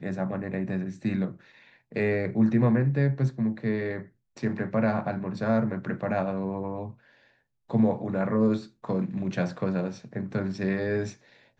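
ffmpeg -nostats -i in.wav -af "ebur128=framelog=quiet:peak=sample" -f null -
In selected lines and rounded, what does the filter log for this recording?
Integrated loudness:
  I:         -28.0 LUFS
  Threshold: -38.5 LUFS
Loudness range:
  LRA:         2.9 LU
  Threshold: -48.1 LUFS
  LRA low:   -29.5 LUFS
  LRA high:  -26.6 LUFS
Sample peak:
  Peak:      -11.7 dBFS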